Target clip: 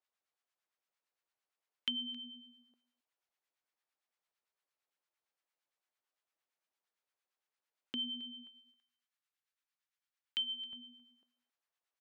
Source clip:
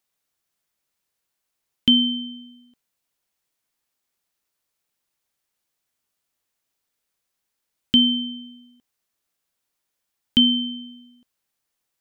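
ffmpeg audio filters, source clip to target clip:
-filter_complex "[0:a]asetnsamples=n=441:p=0,asendcmd='8.47 highpass f 1300;10.73 highpass f 580',highpass=480,aemphasis=mode=reproduction:type=75kf,acompressor=threshold=-37dB:ratio=2,acrossover=split=960[a][b];[a]aeval=exprs='val(0)*(1-0.7/2+0.7/2*cos(2*PI*8.8*n/s))':c=same[c];[b]aeval=exprs='val(0)*(1-0.7/2-0.7/2*cos(2*PI*8.8*n/s))':c=same[d];[c][d]amix=inputs=2:normalize=0,aecho=1:1:268:0.0891,volume=-2.5dB"

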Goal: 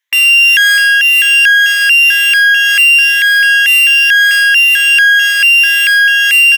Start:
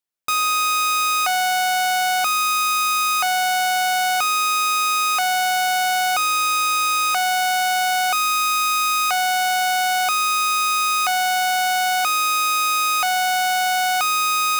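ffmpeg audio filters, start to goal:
-af "afftfilt=real='re*pow(10,10/40*sin(2*PI*(1.1*log(max(b,1)*sr/1024/100)/log(2)-(0.88)*(pts-256)/sr)))':imag='im*pow(10,10/40*sin(2*PI*(1.1*log(max(b,1)*sr/1024/100)/log(2)-(0.88)*(pts-256)/sr)))':win_size=1024:overlap=0.75,bandpass=f=1k:t=q:w=1.2:csg=0,aemphasis=mode=production:type=75fm,acontrast=70,equalizer=f=890:t=o:w=1.3:g=9,asetrate=97902,aresample=44100,tremolo=f=1.4:d=0.63,asoftclip=type=tanh:threshold=-4dB,aecho=1:1:650:0.398,alimiter=level_in=12dB:limit=-1dB:release=50:level=0:latency=1,volume=-2dB"

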